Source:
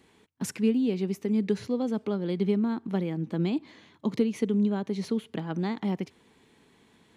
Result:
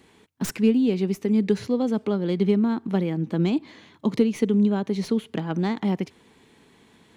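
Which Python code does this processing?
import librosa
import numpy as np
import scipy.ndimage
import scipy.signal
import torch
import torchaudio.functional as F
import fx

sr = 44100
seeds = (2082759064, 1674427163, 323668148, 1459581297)

y = fx.tracing_dist(x, sr, depth_ms=0.056)
y = y * 10.0 ** (5.0 / 20.0)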